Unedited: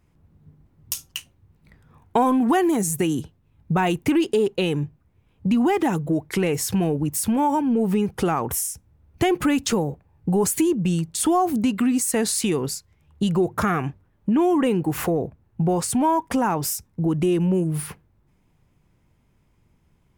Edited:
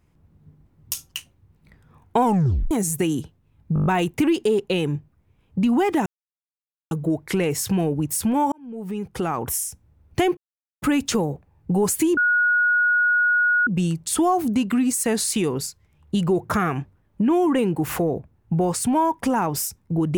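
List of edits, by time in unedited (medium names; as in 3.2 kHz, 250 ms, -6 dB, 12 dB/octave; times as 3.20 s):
2.23 s: tape stop 0.48 s
3.74 s: stutter 0.02 s, 7 plays
5.94 s: insert silence 0.85 s
7.55–8.59 s: fade in
9.40 s: insert silence 0.45 s
10.75 s: add tone 1.45 kHz -15.5 dBFS 1.50 s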